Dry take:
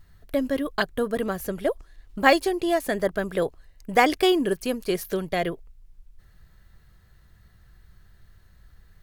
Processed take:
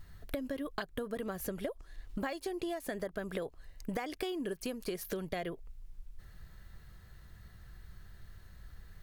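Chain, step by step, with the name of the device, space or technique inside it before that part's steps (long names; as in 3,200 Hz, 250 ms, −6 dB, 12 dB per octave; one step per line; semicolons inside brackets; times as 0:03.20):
serial compression, leveller first (downward compressor 2.5 to 1, threshold −24 dBFS, peak gain reduction 8.5 dB; downward compressor 8 to 1, threshold −36 dBFS, peak gain reduction 16.5 dB)
level +1.5 dB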